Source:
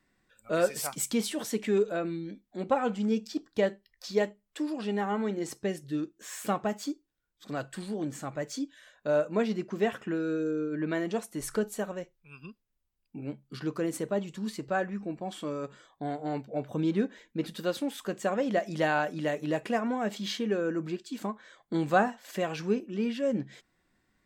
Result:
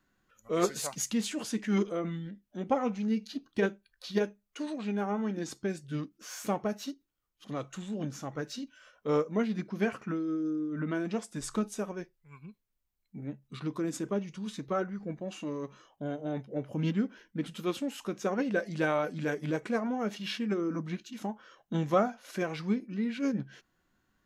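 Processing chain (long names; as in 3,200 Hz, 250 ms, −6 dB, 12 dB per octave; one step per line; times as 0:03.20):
formants moved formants −3 semitones
level −1.5 dB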